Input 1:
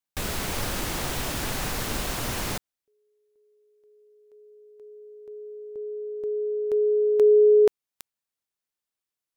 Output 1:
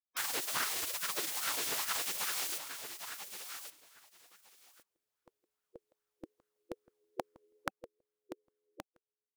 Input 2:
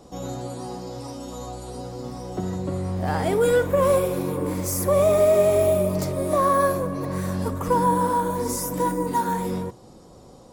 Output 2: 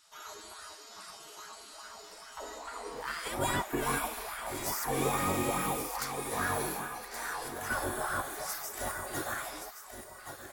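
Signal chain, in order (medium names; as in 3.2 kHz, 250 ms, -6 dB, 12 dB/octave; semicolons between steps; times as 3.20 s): spectral gate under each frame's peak -20 dB weak; feedback delay 1123 ms, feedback 15%, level -9 dB; sweeping bell 2.4 Hz 320–1500 Hz +10 dB; trim -1.5 dB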